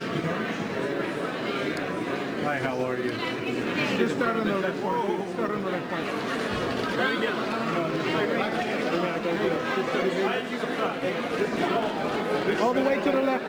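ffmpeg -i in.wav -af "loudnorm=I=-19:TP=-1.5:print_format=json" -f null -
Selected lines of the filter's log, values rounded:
"input_i" : "-26.8",
"input_tp" : "-10.0",
"input_lra" : "2.3",
"input_thresh" : "-36.8",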